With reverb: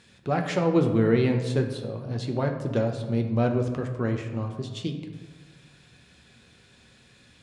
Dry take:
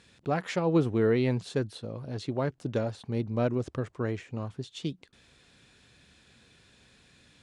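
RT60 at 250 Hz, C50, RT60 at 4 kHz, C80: 1.6 s, 7.5 dB, 0.70 s, 9.0 dB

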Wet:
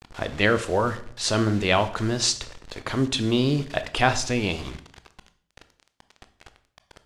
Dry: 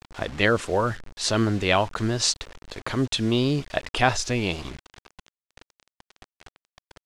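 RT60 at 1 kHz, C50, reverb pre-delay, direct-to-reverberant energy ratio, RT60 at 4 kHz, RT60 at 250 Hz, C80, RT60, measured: 0.50 s, 14.5 dB, 17 ms, 11.0 dB, 0.50 s, 0.65 s, 18.0 dB, 0.55 s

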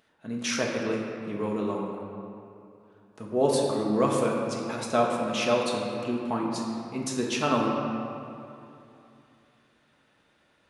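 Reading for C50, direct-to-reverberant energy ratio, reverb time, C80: 1.0 dB, −2.0 dB, 2.8 s, 2.5 dB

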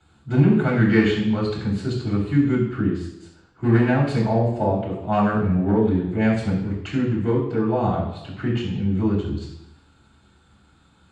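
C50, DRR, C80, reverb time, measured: 4.5 dB, −10.5 dB, 7.0 dB, 0.85 s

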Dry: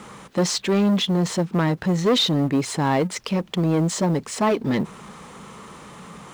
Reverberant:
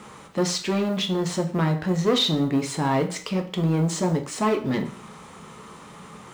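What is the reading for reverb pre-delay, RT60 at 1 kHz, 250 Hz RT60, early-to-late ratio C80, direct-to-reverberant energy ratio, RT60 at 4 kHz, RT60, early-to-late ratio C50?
4 ms, 0.45 s, 0.45 s, 15.5 dB, 4.0 dB, 0.45 s, 0.45 s, 11.5 dB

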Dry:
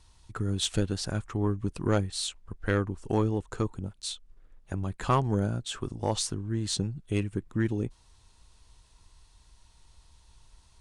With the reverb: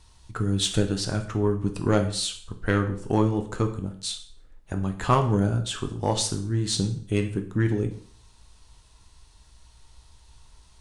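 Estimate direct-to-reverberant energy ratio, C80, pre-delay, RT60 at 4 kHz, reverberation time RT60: 5.5 dB, 15.0 dB, 5 ms, 0.50 s, 0.50 s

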